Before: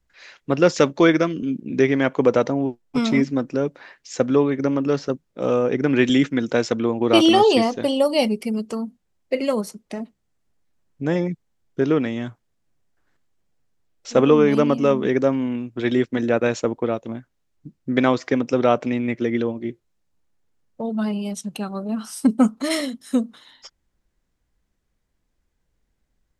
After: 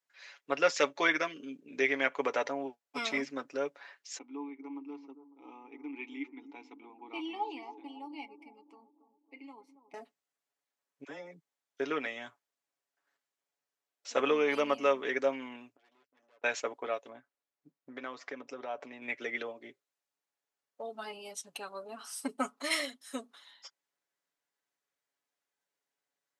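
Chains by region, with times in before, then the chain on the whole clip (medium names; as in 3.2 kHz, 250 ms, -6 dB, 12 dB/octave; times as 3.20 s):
4.18–9.94 s: vowel filter u + bucket-brigade echo 276 ms, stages 2048, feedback 49%, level -13 dB
11.04–11.80 s: compression 5:1, threshold -25 dBFS + phase dispersion lows, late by 53 ms, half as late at 830 Hz
15.72–16.44 s: Butterworth band-stop 3.8 kHz, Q 6.3 + valve stage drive 25 dB, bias 0.7 + inverted gate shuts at -35 dBFS, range -26 dB
17.09–19.02 s: treble shelf 2.2 kHz -8 dB + compression 3:1, threshold -25 dBFS
whole clip: comb 7.1 ms, depth 57%; dynamic bell 2.2 kHz, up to +6 dB, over -39 dBFS, Q 1.7; high-pass 600 Hz 12 dB/octave; trim -8.5 dB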